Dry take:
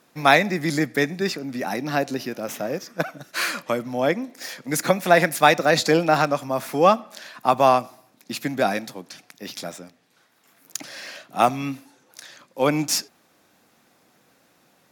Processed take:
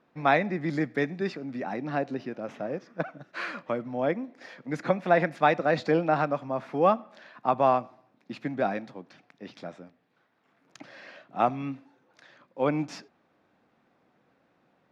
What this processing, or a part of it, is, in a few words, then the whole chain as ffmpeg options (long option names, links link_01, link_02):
phone in a pocket: -filter_complex "[0:a]asettb=1/sr,asplit=3[link_01][link_02][link_03];[link_01]atrim=end=0.734[link_04];[link_02]atrim=start=0.73:end=1.62,asetpts=PTS-STARTPTS,afade=type=in:duration=0.004:curve=qsin,afade=type=out:start_time=0.886:duration=0.004:curve=qsin,highshelf=frequency=3900:gain=6[link_05];[link_03]atrim=start=1.616[link_06];[link_04][link_05]acrossfade=duration=0.004:curve1=hsin:curve2=qsin[link_07];[link_07][link_06]acrossfade=duration=0.004:curve1=qsin:curve2=hsin,lowpass=3500,highshelf=frequency=2500:gain=-10,volume=-5dB"